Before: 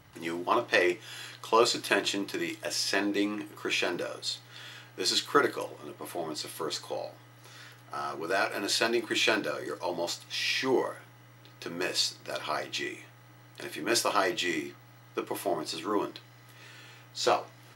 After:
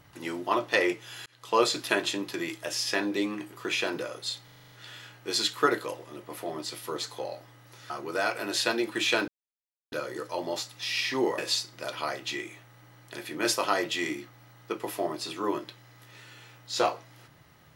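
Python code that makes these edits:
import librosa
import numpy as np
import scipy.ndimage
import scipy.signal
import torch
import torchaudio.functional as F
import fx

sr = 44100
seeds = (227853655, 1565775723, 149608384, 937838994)

y = fx.edit(x, sr, fx.fade_in_span(start_s=1.26, length_s=0.32),
    fx.stutter(start_s=4.44, slice_s=0.04, count=8),
    fx.cut(start_s=7.62, length_s=0.43),
    fx.insert_silence(at_s=9.43, length_s=0.64),
    fx.cut(start_s=10.89, length_s=0.96), tone=tone)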